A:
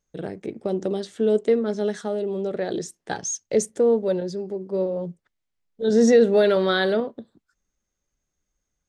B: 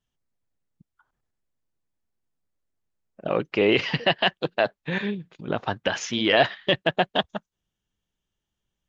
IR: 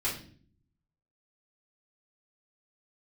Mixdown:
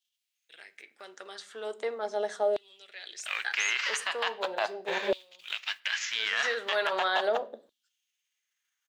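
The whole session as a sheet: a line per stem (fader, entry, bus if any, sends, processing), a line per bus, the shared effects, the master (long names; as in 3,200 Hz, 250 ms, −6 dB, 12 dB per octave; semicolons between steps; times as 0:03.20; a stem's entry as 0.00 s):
−5.0 dB, 0.35 s, send −18 dB, no processing
−4.0 dB, 0.00 s, send −23.5 dB, spectral envelope flattened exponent 0.6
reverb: on, RT60 0.50 s, pre-delay 3 ms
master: auto-filter high-pass saw down 0.39 Hz 550–3,500 Hz; brickwall limiter −17 dBFS, peak gain reduction 11 dB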